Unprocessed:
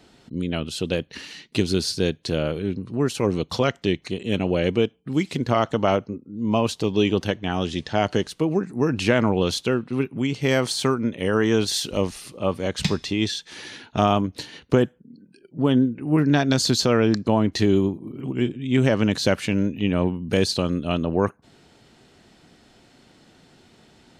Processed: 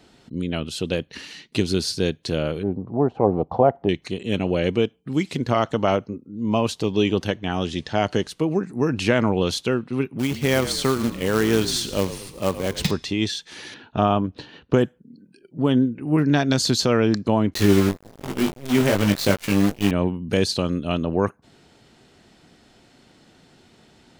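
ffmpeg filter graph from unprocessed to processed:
ffmpeg -i in.wav -filter_complex "[0:a]asettb=1/sr,asplit=3[link_01][link_02][link_03];[link_01]atrim=end=2.634[link_04];[link_02]atrim=start=2.63:end=3.89,asetpts=PTS-STARTPTS,afade=type=in:duration=0.004:curve=qsin,afade=type=out:start_time=1.256:duration=0.004:curve=qsin,lowpass=frequency=770:width_type=q:width=5.2,acompressor=mode=upward:threshold=-33dB:ratio=2.5:attack=3.2:release=140:knee=2.83:detection=peak[link_05];[link_03]atrim=start=3.886[link_06];[link_04][link_05]acrossfade=duration=0.004:curve1=hsin:curve2=qsin[link_07];[link_07][link_06]acrossfade=duration=0.004:curve1=qsin:curve2=hsin,asettb=1/sr,asplit=3[link_08][link_09][link_10];[link_08]atrim=end=10.194[link_11];[link_09]atrim=start=10.19:end=12.91,asetpts=PTS-STARTPTS,afade=type=in:duration=0.004:curve=qsin,afade=type=out:start_time=2.716:duration=0.004:curve=qsin,asplit=6[link_12][link_13][link_14][link_15][link_16][link_17];[link_13]adelay=113,afreqshift=-45,volume=-13dB[link_18];[link_14]adelay=226,afreqshift=-90,volume=-19.6dB[link_19];[link_15]adelay=339,afreqshift=-135,volume=-26.1dB[link_20];[link_16]adelay=452,afreqshift=-180,volume=-32.7dB[link_21];[link_17]adelay=565,afreqshift=-225,volume=-39.2dB[link_22];[link_12][link_18][link_19][link_20][link_21][link_22]amix=inputs=6:normalize=0,atrim=end_sample=119952,acrusher=bits=3:mode=log:mix=0:aa=0.000001[link_23];[link_10]atrim=start=12.906[link_24];[link_11][link_23]acrossfade=duration=0.004:curve1=hsin:curve2=qsin[link_25];[link_25][link_24]acrossfade=duration=0.004:curve1=qsin:curve2=hsin,asettb=1/sr,asplit=3[link_26][link_27][link_28];[link_26]atrim=end=13.744[link_29];[link_27]atrim=start=13.74:end=14.74,asetpts=PTS-STARTPTS,afade=type=in:duration=0.004:curve=qsin,afade=type=out:start_time=0.996:duration=0.004:curve=qsin,lowpass=2900,equalizer=frequency=2100:width_type=o:width=0.23:gain=-10[link_30];[link_28]atrim=start=14.736[link_31];[link_29][link_30]acrossfade=duration=0.004:curve1=hsin:curve2=qsin[link_32];[link_32][link_31]acrossfade=duration=0.004:curve1=qsin:curve2=hsin,asettb=1/sr,asplit=3[link_33][link_34][link_35];[link_33]atrim=end=17.544[link_36];[link_34]atrim=start=17.54:end=19.91,asetpts=PTS-STARTPTS,afade=type=in:duration=0.004:curve=qsin,afade=type=out:start_time=2.366:duration=0.004:curve=qsin,acrusher=bits=5:dc=4:mix=0:aa=0.000001,asplit=2[link_37][link_38];[link_38]adelay=20,volume=-3.5dB[link_39];[link_37][link_39]amix=inputs=2:normalize=0,atrim=end_sample=104517,aeval=exprs='sgn(val(0))*max(abs(val(0))-0.0251,0)':channel_layout=same[link_40];[link_35]atrim=start=19.906[link_41];[link_36][link_40]acrossfade=duration=0.004:curve1=hsin:curve2=qsin[link_42];[link_42][link_41]acrossfade=duration=0.004:curve1=qsin:curve2=hsin" out.wav

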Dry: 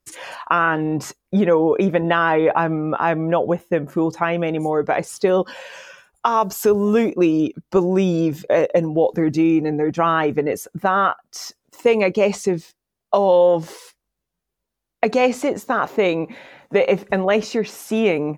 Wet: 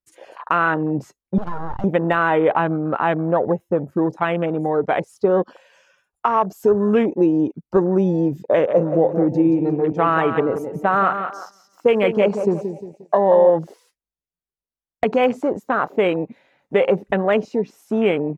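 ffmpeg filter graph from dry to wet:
ffmpeg -i in.wav -filter_complex "[0:a]asettb=1/sr,asplit=3[link_01][link_02][link_03];[link_01]atrim=end=1.384[link_04];[link_02]atrim=start=1.38:end=1.84,asetpts=PTS-STARTPTS,afade=type=in:duration=0.004:curve=qsin,afade=type=out:start_time=0.456:duration=0.004:curve=qsin,lowshelf=frequency=400:gain=-10,acompressor=threshold=-21dB:ratio=2.5:attack=3.2:release=140:knee=1:detection=peak,aeval=exprs='abs(val(0))':channel_layout=same[link_05];[link_03]atrim=start=1.836[link_06];[link_04][link_05]acrossfade=duration=0.004:curve1=hsin:curve2=qsin[link_07];[link_07][link_06]acrossfade=duration=0.004:curve1=qsin:curve2=hsin,asettb=1/sr,asplit=3[link_08][link_09][link_10];[link_08]atrim=end=8.394[link_11];[link_09]atrim=start=8.39:end=13.5,asetpts=PTS-STARTPTS,afade=type=in:duration=0.004:curve=qsin,afade=type=out:start_time=5.106:duration=0.004:curve=qsin,highpass=62,aecho=1:1:177|354|531|708|885:0.398|0.163|0.0669|0.0274|0.0112,atrim=end_sample=225351[link_12];[link_10]atrim=start=13.496[link_13];[link_11][link_12]acrossfade=duration=0.004:curve1=hsin:curve2=qsin[link_14];[link_14][link_13]acrossfade=duration=0.004:curve1=qsin:curve2=hsin,afwtdn=0.0398,deesser=0.7" out.wav

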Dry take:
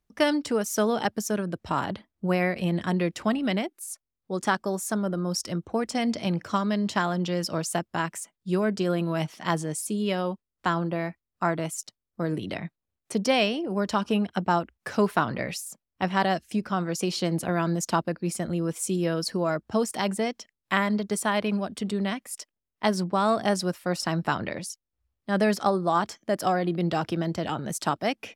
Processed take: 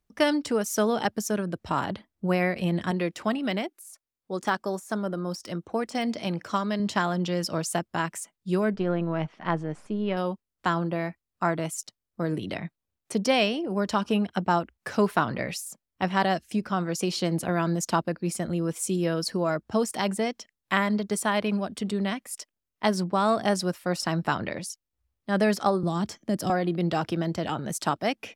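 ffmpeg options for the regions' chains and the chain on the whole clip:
ffmpeg -i in.wav -filter_complex "[0:a]asettb=1/sr,asplit=3[link_01][link_02][link_03];[link_01]atrim=end=2.914[link_04];[link_02]atrim=start=2.91:end=6.8,asetpts=PTS-STARTPTS,afade=type=in:duration=0.004:curve=qsin,afade=type=out:start_time=3.886:duration=0.004:curve=qsin,lowshelf=frequency=130:gain=-10.5,deesser=0.8[link_05];[link_03]atrim=start=6.796[link_06];[link_04][link_05]acrossfade=duration=0.004:curve1=hsin:curve2=qsin[link_07];[link_07][link_06]acrossfade=duration=0.004:curve1=qsin:curve2=hsin,asettb=1/sr,asplit=3[link_08][link_09][link_10];[link_08]atrim=end=8.744[link_11];[link_09]atrim=start=8.74:end=10.17,asetpts=PTS-STARTPTS,afade=type=in:duration=0.004:curve=qsin,afade=type=out:start_time=1.426:duration=0.004:curve=qsin,aeval=exprs='if(lt(val(0),0),0.708*val(0),val(0))':channel_layout=same,lowpass=2200[link_12];[link_10]atrim=start=10.166[link_13];[link_11][link_12]acrossfade=duration=0.004:curve1=hsin:curve2=qsin[link_14];[link_14][link_13]acrossfade=duration=0.004:curve1=qsin:curve2=hsin,asettb=1/sr,asplit=3[link_15][link_16][link_17];[link_15]atrim=end=25.834[link_18];[link_16]atrim=start=25.83:end=26.5,asetpts=PTS-STARTPTS,afade=type=in:duration=0.004:curve=qsin,afade=type=out:start_time=0.666:duration=0.004:curve=qsin,lowshelf=frequency=430:gain=8,bandreject=frequency=1500:width=30,acrossover=split=300|3000[link_19][link_20][link_21];[link_20]acompressor=threshold=-39dB:ratio=2:attack=3.2:release=140:knee=2.83:detection=peak[link_22];[link_19][link_22][link_21]amix=inputs=3:normalize=0[link_23];[link_17]atrim=start=26.496[link_24];[link_18][link_23]acrossfade=duration=0.004:curve1=hsin:curve2=qsin[link_25];[link_25][link_24]acrossfade=duration=0.004:curve1=qsin:curve2=hsin" out.wav

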